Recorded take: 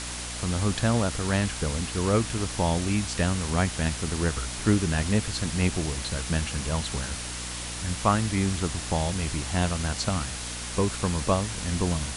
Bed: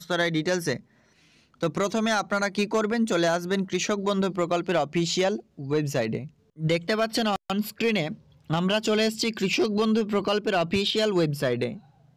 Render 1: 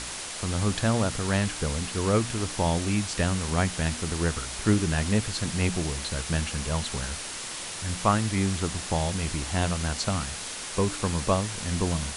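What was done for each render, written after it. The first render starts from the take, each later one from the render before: de-hum 60 Hz, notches 5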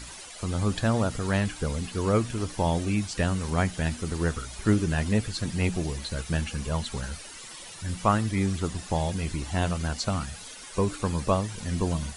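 denoiser 12 dB, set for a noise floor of -36 dBFS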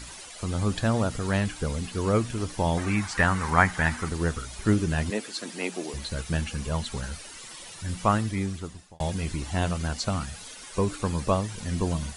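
2.77–4.09 band shelf 1300 Hz +11.5 dB; 5.1–5.94 HPF 260 Hz 24 dB/oct; 8.17–9 fade out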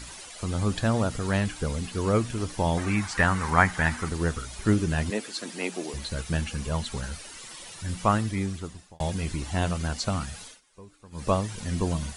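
10.42–11.3 dip -22.5 dB, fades 0.19 s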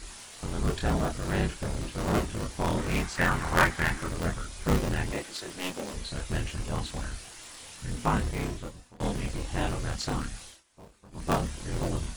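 cycle switcher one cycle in 3, inverted; chorus voices 6, 0.23 Hz, delay 27 ms, depth 3 ms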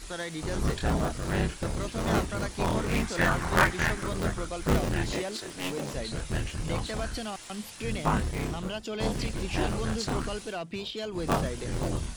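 add bed -11.5 dB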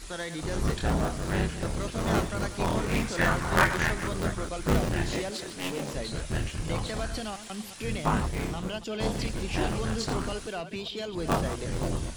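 reverse delay 0.136 s, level -11 dB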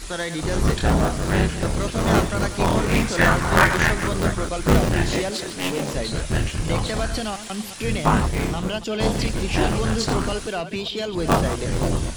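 gain +8 dB; limiter -3 dBFS, peak gain reduction 2.5 dB

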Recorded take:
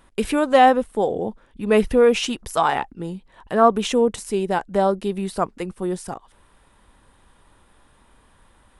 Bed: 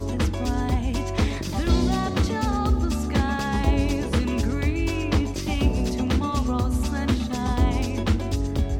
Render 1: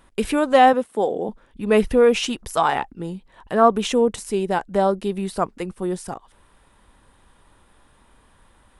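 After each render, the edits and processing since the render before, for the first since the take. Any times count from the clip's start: 0.73–1.29 HPF 200 Hz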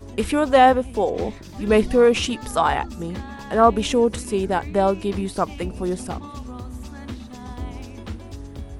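add bed -11 dB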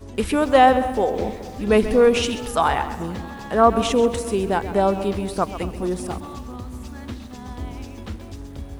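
dark delay 0.216 s, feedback 52%, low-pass 1600 Hz, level -15.5 dB; lo-fi delay 0.133 s, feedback 35%, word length 7-bit, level -12.5 dB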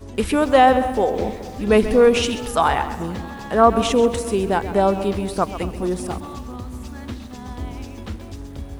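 gain +1.5 dB; limiter -2 dBFS, peak gain reduction 1.5 dB

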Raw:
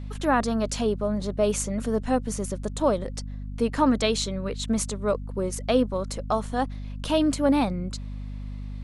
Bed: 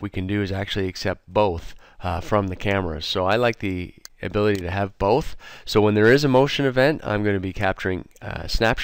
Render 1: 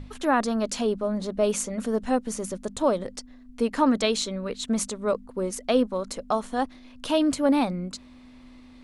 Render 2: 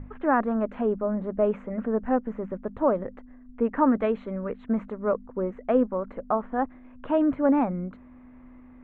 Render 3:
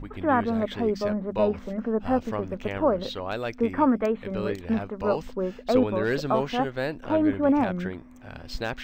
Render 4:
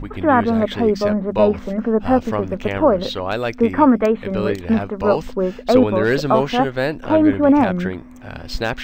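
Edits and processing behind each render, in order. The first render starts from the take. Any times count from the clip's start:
notches 50/100/150/200 Hz
inverse Chebyshev low-pass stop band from 4700 Hz, stop band 50 dB
add bed -11.5 dB
gain +8.5 dB; limiter -3 dBFS, peak gain reduction 1.5 dB

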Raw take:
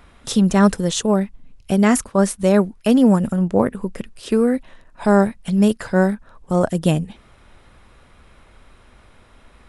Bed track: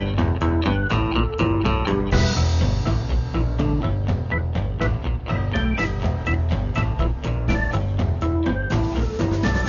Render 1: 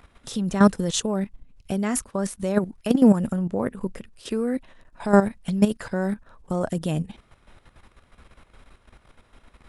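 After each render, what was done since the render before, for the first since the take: level quantiser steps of 12 dB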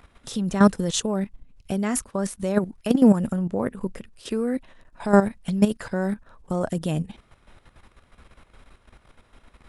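nothing audible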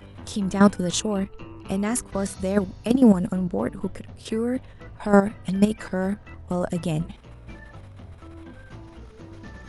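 add bed track -21.5 dB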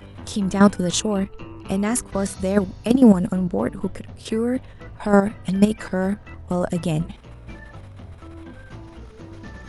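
gain +3 dB; limiter -2 dBFS, peak gain reduction 2.5 dB

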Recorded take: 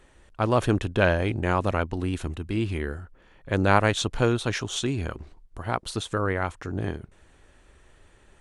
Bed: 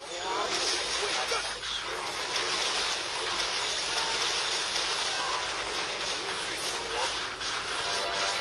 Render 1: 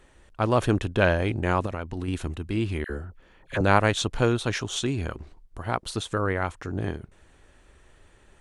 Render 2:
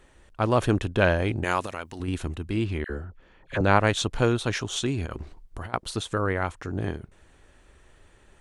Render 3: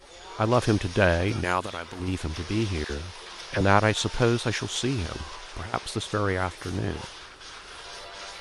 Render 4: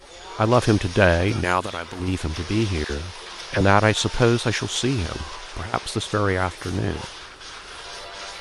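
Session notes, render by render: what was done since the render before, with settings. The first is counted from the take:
1.66–2.08 compressor, threshold -26 dBFS; 2.84–3.61 dispersion lows, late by 57 ms, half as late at 1300 Hz
1.44–2 tilt +3 dB/oct; 2.64–3.87 air absorption 52 m; 5.06–5.74 negative-ratio compressor -36 dBFS
add bed -10.5 dB
gain +4.5 dB; limiter -2 dBFS, peak gain reduction 2 dB

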